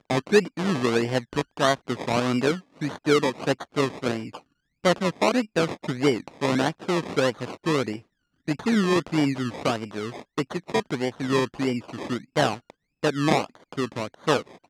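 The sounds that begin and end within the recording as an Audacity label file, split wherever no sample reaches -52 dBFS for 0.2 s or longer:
4.840000	8.030000	sound
8.470000	12.700000	sound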